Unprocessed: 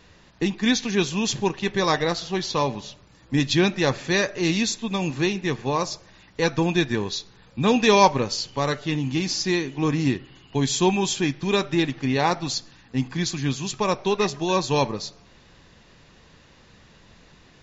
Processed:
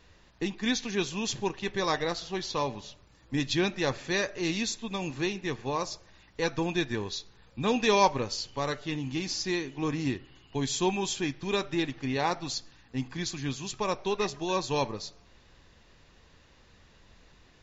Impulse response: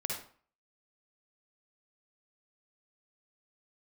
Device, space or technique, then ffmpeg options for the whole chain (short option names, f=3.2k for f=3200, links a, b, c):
low shelf boost with a cut just above: -af "lowshelf=f=110:g=6,equalizer=f=160:t=o:w=1.2:g=-5.5,volume=-6.5dB"